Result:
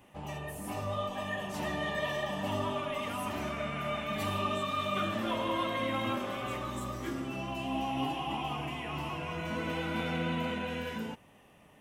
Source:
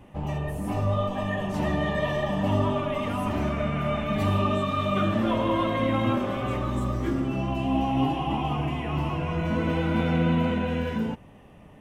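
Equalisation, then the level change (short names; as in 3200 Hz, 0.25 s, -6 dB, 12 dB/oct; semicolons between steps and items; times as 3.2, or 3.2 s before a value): tilt +2.5 dB/oct; -5.5 dB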